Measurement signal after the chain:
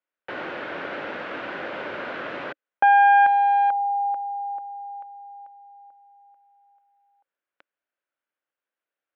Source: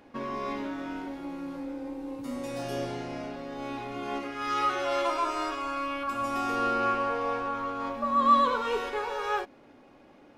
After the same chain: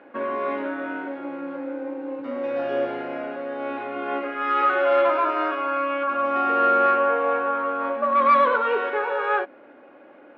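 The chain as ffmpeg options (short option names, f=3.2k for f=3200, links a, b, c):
-af "aeval=exprs='clip(val(0),-1,0.0708)':c=same,highpass=300,equalizer=f=310:t=q:w=4:g=4,equalizer=f=560:t=q:w=4:g=7,equalizer=f=1.5k:t=q:w=4:g=8,lowpass=f=2.8k:w=0.5412,lowpass=f=2.8k:w=1.3066,acontrast=87,volume=-2.5dB"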